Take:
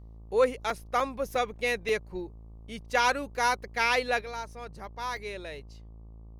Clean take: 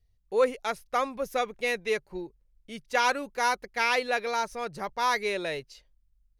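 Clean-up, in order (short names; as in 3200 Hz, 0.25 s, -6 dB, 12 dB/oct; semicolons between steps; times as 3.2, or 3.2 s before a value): de-hum 55.2 Hz, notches 22; interpolate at 0.7/1/1.35/1.89/5.17, 2.1 ms; gain 0 dB, from 4.21 s +8.5 dB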